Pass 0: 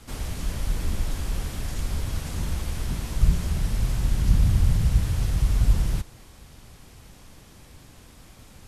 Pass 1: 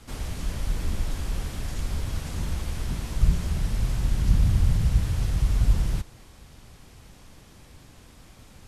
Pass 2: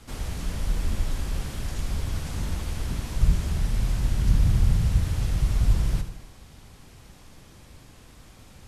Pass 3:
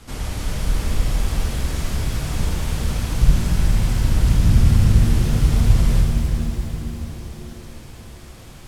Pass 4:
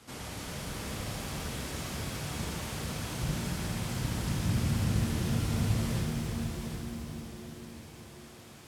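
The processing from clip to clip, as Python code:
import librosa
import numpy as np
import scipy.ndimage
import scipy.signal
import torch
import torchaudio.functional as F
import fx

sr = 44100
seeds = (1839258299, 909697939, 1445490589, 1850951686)

y1 = fx.high_shelf(x, sr, hz=11000.0, db=-5.5)
y1 = y1 * 10.0 ** (-1.0 / 20.0)
y2 = fx.echo_feedback(y1, sr, ms=76, feedback_pct=54, wet_db=-10.5)
y3 = fx.rev_shimmer(y2, sr, seeds[0], rt60_s=3.9, semitones=7, shimmer_db=-8, drr_db=0.0)
y3 = y3 * 10.0 ** (4.5 / 20.0)
y4 = scipy.signal.sosfilt(scipy.signal.butter(2, 110.0, 'highpass', fs=sr, output='sos'), y3)
y4 = fx.low_shelf(y4, sr, hz=220.0, db=-3.0)
y4 = y4 + 10.0 ** (-7.0 / 20.0) * np.pad(y4, (int(752 * sr / 1000.0), 0))[:len(y4)]
y4 = y4 * 10.0 ** (-7.5 / 20.0)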